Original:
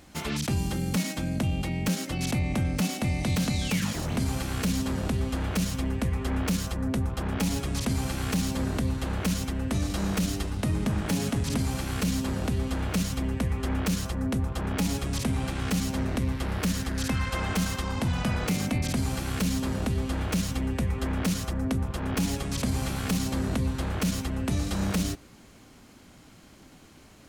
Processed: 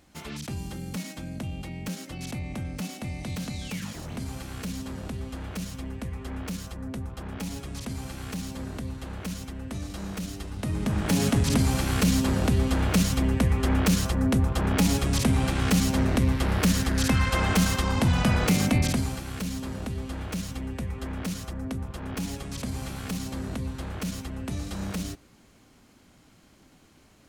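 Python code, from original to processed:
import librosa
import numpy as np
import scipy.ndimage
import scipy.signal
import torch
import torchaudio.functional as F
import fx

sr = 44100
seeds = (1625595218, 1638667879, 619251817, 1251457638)

y = fx.gain(x, sr, db=fx.line((10.36, -7.0), (11.24, 5.0), (18.83, 5.0), (19.23, -5.0)))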